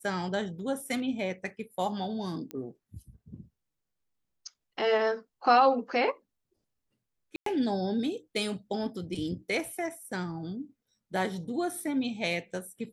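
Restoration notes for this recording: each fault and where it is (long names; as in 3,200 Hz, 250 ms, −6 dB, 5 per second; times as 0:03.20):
0:02.51: click −23 dBFS
0:07.36–0:07.46: drop-out 103 ms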